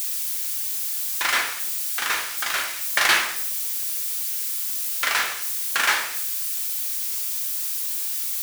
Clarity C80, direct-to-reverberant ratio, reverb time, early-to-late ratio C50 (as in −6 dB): 11.0 dB, 1.5 dB, 0.65 s, 8.0 dB